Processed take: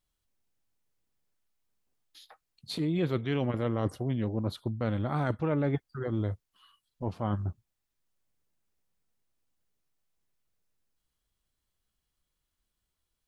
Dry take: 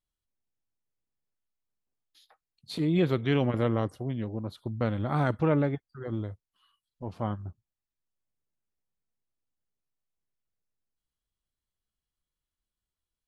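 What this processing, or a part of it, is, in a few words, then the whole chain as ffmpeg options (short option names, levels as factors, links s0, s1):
compression on the reversed sound: -af "areverse,acompressor=threshold=0.0224:ratio=6,areverse,volume=2.24"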